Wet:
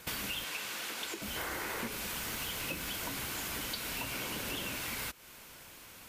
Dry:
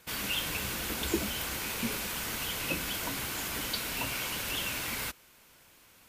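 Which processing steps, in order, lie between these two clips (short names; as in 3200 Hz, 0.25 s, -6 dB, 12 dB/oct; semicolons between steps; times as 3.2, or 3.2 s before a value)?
1.36–1.88 spectral gain 290–2200 Hz +8 dB; 2.21–2.88 modulation noise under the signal 23 dB; 4.13–4.76 bell 290 Hz +7 dB 2.4 oct; compressor 6:1, threshold -43 dBFS, peak gain reduction 17.5 dB; 0.44–1.22 weighting filter A; gain +7 dB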